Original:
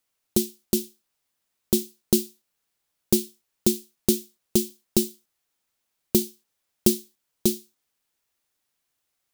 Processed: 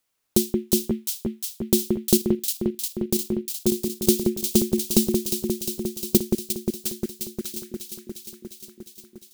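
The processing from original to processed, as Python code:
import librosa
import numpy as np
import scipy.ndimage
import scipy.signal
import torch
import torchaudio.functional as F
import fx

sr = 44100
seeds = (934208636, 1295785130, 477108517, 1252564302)

p1 = fx.level_steps(x, sr, step_db=11, at=(2.17, 3.72))
p2 = fx.ladder_highpass(p1, sr, hz=1300.0, resonance_pct=60, at=(6.17, 7.54))
p3 = p2 + fx.echo_alternate(p2, sr, ms=177, hz=2100.0, feedback_pct=85, wet_db=-3.0, dry=0)
y = p3 * librosa.db_to_amplitude(2.0)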